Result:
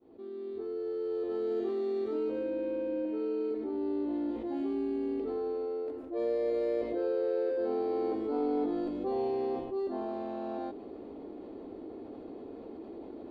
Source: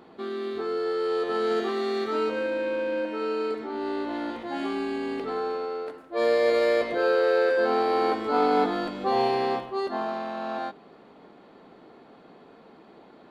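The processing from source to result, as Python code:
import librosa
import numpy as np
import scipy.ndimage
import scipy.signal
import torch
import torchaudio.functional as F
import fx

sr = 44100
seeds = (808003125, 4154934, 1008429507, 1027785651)

y = fx.fade_in_head(x, sr, length_s=1.66)
y = fx.curve_eq(y, sr, hz=(100.0, 160.0, 300.0, 1500.0, 2500.0, 6800.0), db=(0, -18, 1, -22, -18, -21))
y = fx.env_flatten(y, sr, amount_pct=50)
y = y * 10.0 ** (-3.5 / 20.0)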